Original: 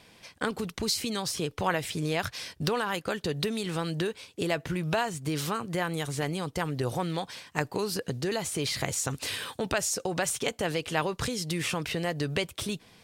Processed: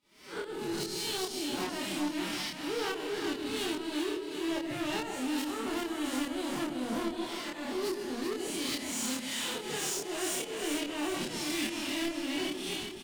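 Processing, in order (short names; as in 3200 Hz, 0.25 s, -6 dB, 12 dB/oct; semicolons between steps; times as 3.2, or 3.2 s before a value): time blur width 0.179 s; de-hum 141.5 Hz, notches 21; dynamic EQ 2900 Hz, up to +4 dB, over -51 dBFS, Q 2.3; sample leveller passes 2; formant-preserving pitch shift +11.5 st; tremolo saw up 2.4 Hz, depth 95%; soft clip -33.5 dBFS, distortion -8 dB; doubler 27 ms -2 dB; split-band echo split 680 Hz, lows 0.139 s, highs 0.388 s, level -5.5 dB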